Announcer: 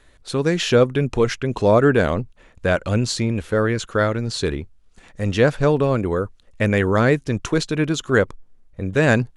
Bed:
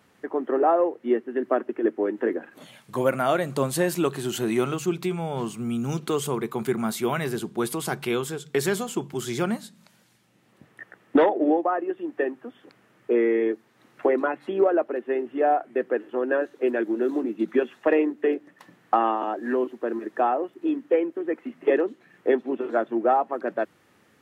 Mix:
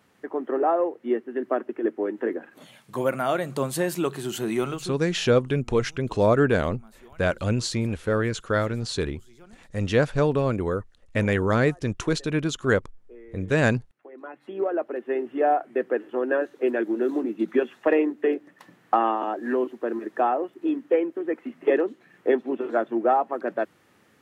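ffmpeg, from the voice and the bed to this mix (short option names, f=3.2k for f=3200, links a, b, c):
-filter_complex "[0:a]adelay=4550,volume=-4.5dB[a];[1:a]volume=23.5dB,afade=t=out:st=4.7:d=0.28:silence=0.0668344,afade=t=in:st=14.11:d=1.12:silence=0.0530884[b];[a][b]amix=inputs=2:normalize=0"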